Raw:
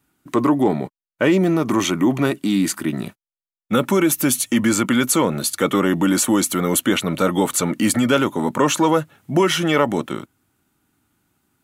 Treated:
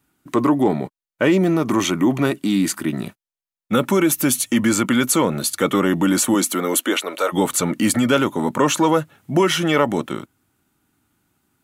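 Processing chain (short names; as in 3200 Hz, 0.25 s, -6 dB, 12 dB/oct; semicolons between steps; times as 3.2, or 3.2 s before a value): 6.34–7.32 HPF 160 Hz -> 480 Hz 24 dB/oct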